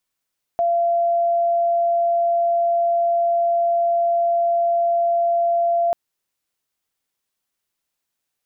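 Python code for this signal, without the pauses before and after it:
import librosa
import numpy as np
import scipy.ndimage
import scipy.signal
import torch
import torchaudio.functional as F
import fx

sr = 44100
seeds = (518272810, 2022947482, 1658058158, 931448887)

y = 10.0 ** (-15.5 / 20.0) * np.sin(2.0 * np.pi * (685.0 * (np.arange(round(5.34 * sr)) / sr)))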